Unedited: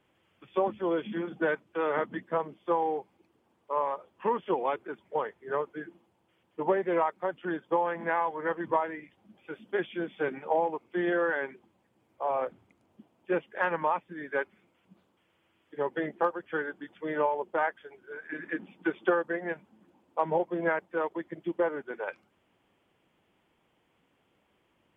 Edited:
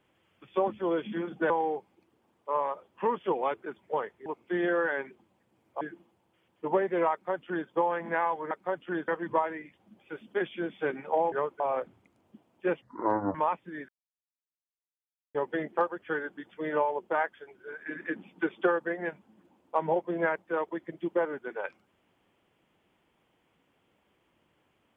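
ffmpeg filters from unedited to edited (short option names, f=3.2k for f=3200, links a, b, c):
-filter_complex "[0:a]asplit=12[a][b][c][d][e][f][g][h][i][j][k][l];[a]atrim=end=1.502[m];[b]atrim=start=2.718:end=5.482[n];[c]atrim=start=10.698:end=12.252[o];[d]atrim=start=5.758:end=8.462[p];[e]atrim=start=7.068:end=7.642[q];[f]atrim=start=8.458:end=10.702[r];[g]atrim=start=5.478:end=5.762[s];[h]atrim=start=12.248:end=13.474[t];[i]atrim=start=13.47:end=13.78,asetpts=PTS-STARTPTS,asetrate=26019,aresample=44100,atrim=end_sample=23171,asetpts=PTS-STARTPTS[u];[j]atrim=start=13.776:end=14.32,asetpts=PTS-STARTPTS,afade=t=out:st=0.54:d=0.004:c=hsin[v];[k]atrim=start=14.32:end=15.78,asetpts=PTS-STARTPTS,volume=0[w];[l]atrim=start=15.78,asetpts=PTS-STARTPTS,afade=t=in:d=0.004:c=hsin[x];[m][n]acrossfade=d=0.004:c1=hsin:c2=hsin[y];[y][o]acrossfade=d=0.004:c1=hsin:c2=hsin[z];[z][p]acrossfade=d=0.004:c1=hsin:c2=hsin[aa];[aa][q]acrossfade=d=0.004:c1=hsin:c2=hsin[ab];[ab][r]acrossfade=d=0.004:c1=hsin:c2=hsin[ac];[ac][s]acrossfade=d=0.004:c1=hsin:c2=hsin[ad];[ad][t]acrossfade=d=0.004:c1=hsin:c2=hsin[ae];[ae][u]acrossfade=d=0.004:c1=hsin:c2=hsin[af];[v][w][x]concat=n=3:v=0:a=1[ag];[af][ag]acrossfade=d=0.004:c1=hsin:c2=hsin"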